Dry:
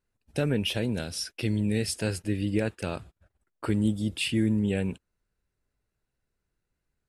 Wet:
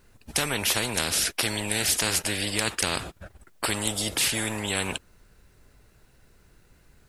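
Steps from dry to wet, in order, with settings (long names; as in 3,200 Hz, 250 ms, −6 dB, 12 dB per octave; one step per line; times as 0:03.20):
every bin compressed towards the loudest bin 4 to 1
level +7.5 dB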